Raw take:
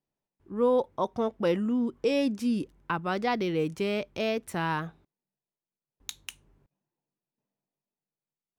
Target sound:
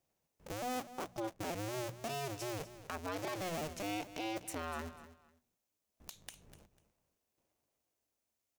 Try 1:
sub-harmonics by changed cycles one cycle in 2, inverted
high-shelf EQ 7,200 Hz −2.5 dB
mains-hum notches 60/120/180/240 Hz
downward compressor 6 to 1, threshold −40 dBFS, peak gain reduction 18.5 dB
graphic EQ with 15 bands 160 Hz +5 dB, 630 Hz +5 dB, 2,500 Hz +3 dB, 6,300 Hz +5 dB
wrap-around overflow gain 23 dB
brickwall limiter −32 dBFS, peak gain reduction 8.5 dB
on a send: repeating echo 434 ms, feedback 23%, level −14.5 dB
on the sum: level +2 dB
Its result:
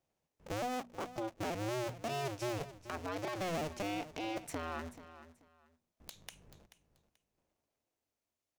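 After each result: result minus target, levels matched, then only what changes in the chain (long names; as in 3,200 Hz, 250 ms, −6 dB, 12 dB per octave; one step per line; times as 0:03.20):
echo 186 ms late; 8,000 Hz band −4.0 dB
change: repeating echo 248 ms, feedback 23%, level −14.5 dB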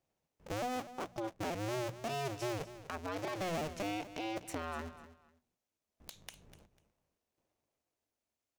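8,000 Hz band −4.0 dB
change: high-shelf EQ 7,200 Hz +7 dB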